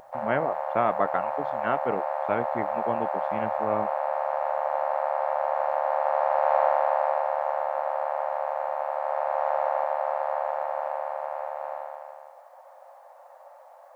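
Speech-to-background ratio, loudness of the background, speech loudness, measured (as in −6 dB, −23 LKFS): −2.5 dB, −28.0 LKFS, −30.5 LKFS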